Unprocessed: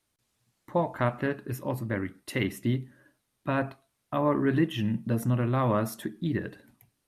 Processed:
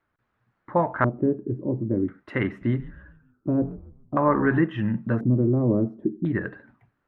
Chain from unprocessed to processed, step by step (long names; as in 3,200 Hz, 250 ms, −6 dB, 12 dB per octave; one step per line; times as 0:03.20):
auto-filter low-pass square 0.48 Hz 360–1,500 Hz
0:02.47–0:04.58: echo with shifted repeats 141 ms, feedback 42%, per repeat −95 Hz, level −16 dB
level +3 dB